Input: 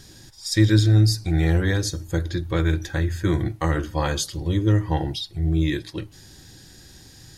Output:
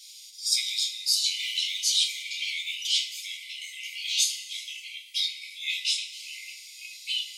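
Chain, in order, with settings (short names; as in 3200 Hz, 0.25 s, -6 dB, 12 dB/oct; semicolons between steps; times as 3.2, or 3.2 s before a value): echoes that change speed 0.587 s, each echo -4 st, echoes 2; brick-wall FIR high-pass 2000 Hz; two-slope reverb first 0.28 s, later 1.5 s, from -17 dB, DRR -2 dB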